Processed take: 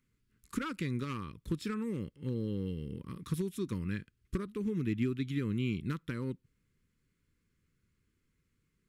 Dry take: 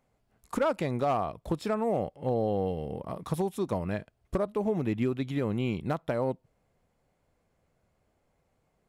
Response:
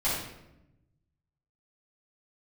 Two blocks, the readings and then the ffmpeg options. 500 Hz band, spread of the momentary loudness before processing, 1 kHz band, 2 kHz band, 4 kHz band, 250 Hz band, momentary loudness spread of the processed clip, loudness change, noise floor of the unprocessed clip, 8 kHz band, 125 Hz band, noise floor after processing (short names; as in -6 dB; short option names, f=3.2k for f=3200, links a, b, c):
-12.0 dB, 7 LU, -14.5 dB, -3.0 dB, -2.0 dB, -3.0 dB, 8 LU, -6.0 dB, -74 dBFS, -2.0 dB, -2.0 dB, -78 dBFS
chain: -af "asuperstop=centerf=700:order=4:qfactor=0.65,volume=-2dB"